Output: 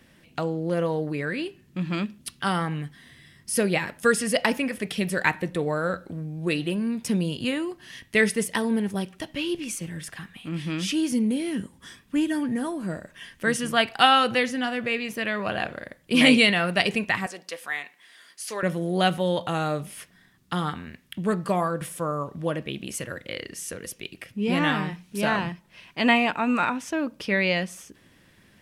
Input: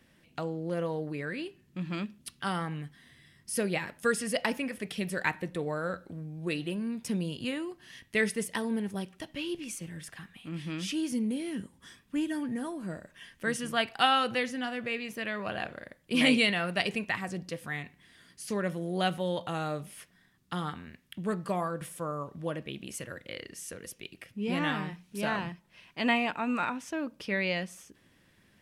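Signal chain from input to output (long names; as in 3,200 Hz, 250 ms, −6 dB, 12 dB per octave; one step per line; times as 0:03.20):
0:17.26–0:18.63: high-pass filter 630 Hz 12 dB per octave
level +7 dB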